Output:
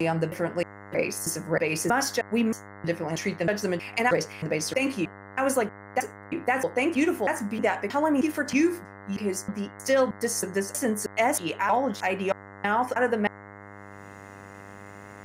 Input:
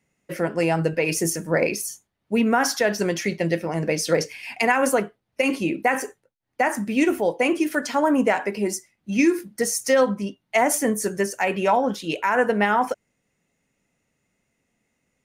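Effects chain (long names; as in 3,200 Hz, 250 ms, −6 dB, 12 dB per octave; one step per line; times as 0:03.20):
slices reordered back to front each 316 ms, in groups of 3
upward compression, threshold −32 dBFS
hum with harmonics 100 Hz, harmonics 21, −41 dBFS −2 dB per octave
pitch vibrato 0.54 Hz 16 cents
level −4 dB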